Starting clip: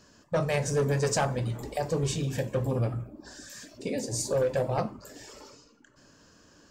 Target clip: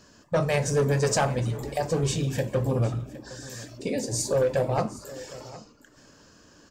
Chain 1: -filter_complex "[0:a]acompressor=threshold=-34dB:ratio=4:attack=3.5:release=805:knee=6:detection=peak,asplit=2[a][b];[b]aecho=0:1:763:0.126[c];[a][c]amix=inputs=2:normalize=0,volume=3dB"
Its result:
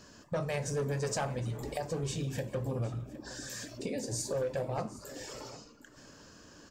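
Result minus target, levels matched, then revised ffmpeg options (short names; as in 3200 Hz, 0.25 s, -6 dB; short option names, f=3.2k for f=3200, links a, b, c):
compressor: peak gain reduction +10 dB
-filter_complex "[0:a]asplit=2[a][b];[b]aecho=0:1:763:0.126[c];[a][c]amix=inputs=2:normalize=0,volume=3dB"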